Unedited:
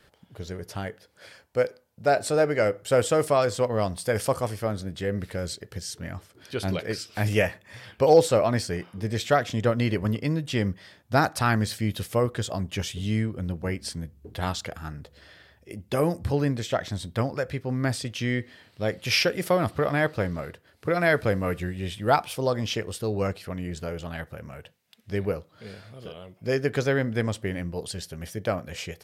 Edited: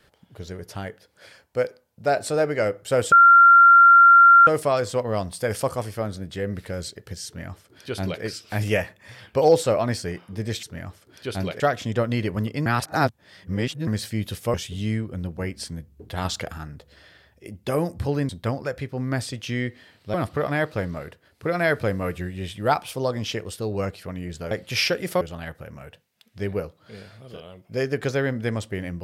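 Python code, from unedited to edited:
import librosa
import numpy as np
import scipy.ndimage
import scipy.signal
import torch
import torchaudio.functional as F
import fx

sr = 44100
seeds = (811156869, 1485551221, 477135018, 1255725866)

y = fx.edit(x, sr, fx.insert_tone(at_s=3.12, length_s=1.35, hz=1380.0, db=-8.0),
    fx.duplicate(start_s=5.91, length_s=0.97, to_s=9.28),
    fx.reverse_span(start_s=10.34, length_s=1.21),
    fx.cut(start_s=12.22, length_s=0.57),
    fx.clip_gain(start_s=14.5, length_s=0.33, db=4.0),
    fx.cut(start_s=16.54, length_s=0.47),
    fx.move(start_s=18.86, length_s=0.7, to_s=23.93), tone=tone)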